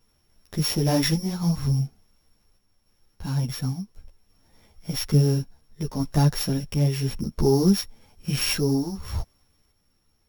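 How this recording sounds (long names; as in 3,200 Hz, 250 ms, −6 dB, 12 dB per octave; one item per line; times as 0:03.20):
a buzz of ramps at a fixed pitch in blocks of 8 samples
sample-and-hold tremolo
a shimmering, thickened sound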